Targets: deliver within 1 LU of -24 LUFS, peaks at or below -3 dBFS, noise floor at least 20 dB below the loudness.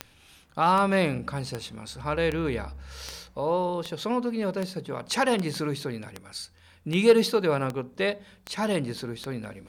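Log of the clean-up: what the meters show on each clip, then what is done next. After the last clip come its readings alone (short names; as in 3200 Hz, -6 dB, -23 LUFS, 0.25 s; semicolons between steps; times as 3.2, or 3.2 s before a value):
clicks 13; loudness -27.0 LUFS; peak -8.0 dBFS; loudness target -24.0 LUFS
-> de-click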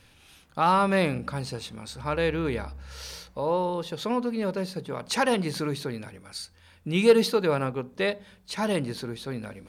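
clicks 0; loudness -27.0 LUFS; peak -8.0 dBFS; loudness target -24.0 LUFS
-> gain +3 dB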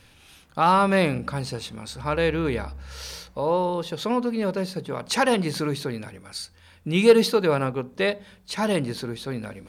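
loudness -24.0 LUFS; peak -5.0 dBFS; noise floor -54 dBFS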